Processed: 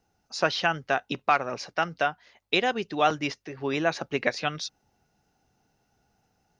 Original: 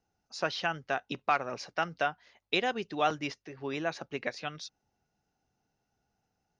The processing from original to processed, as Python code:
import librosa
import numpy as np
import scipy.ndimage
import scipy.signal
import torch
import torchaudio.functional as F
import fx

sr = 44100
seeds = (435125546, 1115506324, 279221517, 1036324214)

y = fx.rider(x, sr, range_db=4, speed_s=2.0)
y = F.gain(torch.from_numpy(y), 5.5).numpy()